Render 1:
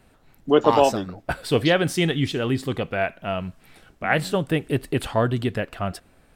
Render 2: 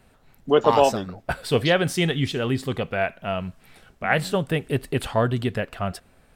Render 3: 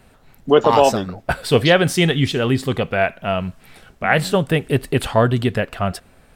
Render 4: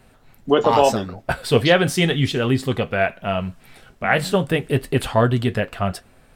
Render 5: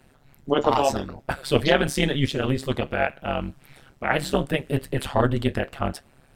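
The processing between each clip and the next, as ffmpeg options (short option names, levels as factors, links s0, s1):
-af "equalizer=f=310:w=7.9:g=-8.5"
-af "alimiter=level_in=2.24:limit=0.891:release=50:level=0:latency=1,volume=0.891"
-af "flanger=delay=7.7:depth=2.4:regen=-60:speed=0.79:shape=sinusoidal,volume=1.33"
-af "tremolo=f=140:d=0.974"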